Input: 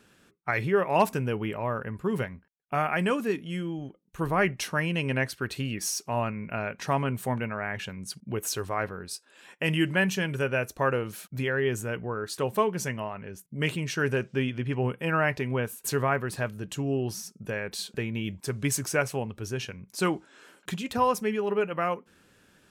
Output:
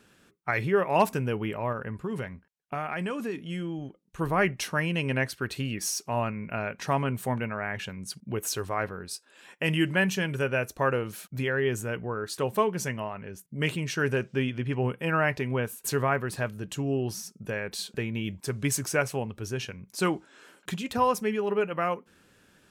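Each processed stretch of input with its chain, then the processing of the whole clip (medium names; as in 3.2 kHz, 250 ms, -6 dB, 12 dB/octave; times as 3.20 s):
1.72–4.20 s: low-pass 11 kHz + compression 4:1, threshold -28 dBFS
whole clip: none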